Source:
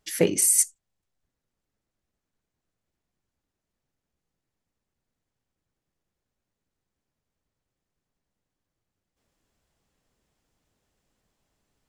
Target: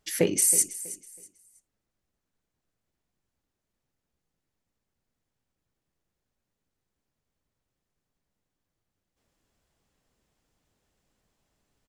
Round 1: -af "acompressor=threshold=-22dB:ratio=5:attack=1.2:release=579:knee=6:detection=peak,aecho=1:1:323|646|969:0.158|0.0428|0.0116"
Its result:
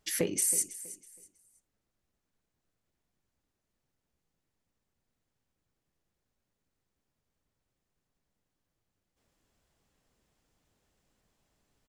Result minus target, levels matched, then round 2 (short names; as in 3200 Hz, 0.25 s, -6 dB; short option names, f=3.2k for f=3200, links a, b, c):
compressor: peak gain reduction +8 dB
-af "acompressor=threshold=-11.5dB:ratio=5:attack=1.2:release=579:knee=6:detection=peak,aecho=1:1:323|646|969:0.158|0.0428|0.0116"